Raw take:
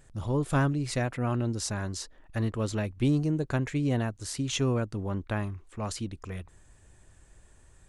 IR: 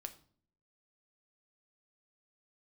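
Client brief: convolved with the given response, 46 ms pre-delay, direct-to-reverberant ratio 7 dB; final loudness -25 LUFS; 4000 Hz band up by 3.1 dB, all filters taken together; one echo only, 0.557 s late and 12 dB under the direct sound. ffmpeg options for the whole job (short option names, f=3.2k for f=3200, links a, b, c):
-filter_complex "[0:a]equalizer=f=4k:t=o:g=4,aecho=1:1:557:0.251,asplit=2[a][b];[1:a]atrim=start_sample=2205,adelay=46[c];[b][c]afir=irnorm=-1:irlink=0,volume=-3dB[d];[a][d]amix=inputs=2:normalize=0,volume=4dB"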